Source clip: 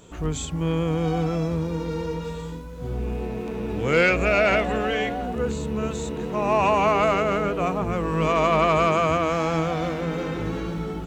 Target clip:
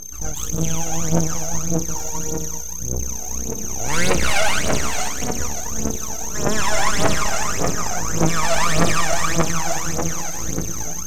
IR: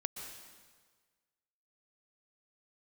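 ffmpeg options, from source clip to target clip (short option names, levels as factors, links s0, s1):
-filter_complex "[0:a]aeval=exprs='val(0)+0.0398*sin(2*PI*6300*n/s)':c=same[s0];[1:a]atrim=start_sample=2205,asetrate=36162,aresample=44100[s1];[s0][s1]afir=irnorm=-1:irlink=0,aeval=exprs='0.531*(cos(1*acos(clip(val(0)/0.531,-1,1)))-cos(1*PI/2))+0.211*(cos(6*acos(clip(val(0)/0.531,-1,1)))-cos(6*PI/2))':c=same,aphaser=in_gain=1:out_gain=1:delay=1.5:decay=0.74:speed=1.7:type=triangular,volume=0.376"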